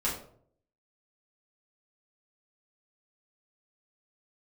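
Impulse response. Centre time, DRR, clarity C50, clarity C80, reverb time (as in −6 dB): 33 ms, −7.5 dB, 6.0 dB, 9.5 dB, 0.60 s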